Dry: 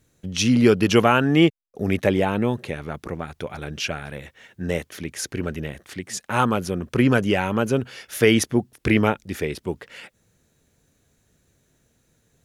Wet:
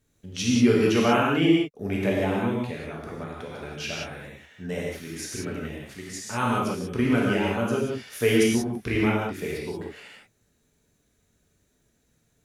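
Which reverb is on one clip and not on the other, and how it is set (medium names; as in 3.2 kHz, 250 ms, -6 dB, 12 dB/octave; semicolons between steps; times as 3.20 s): gated-style reverb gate 210 ms flat, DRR -4.5 dB; trim -9.5 dB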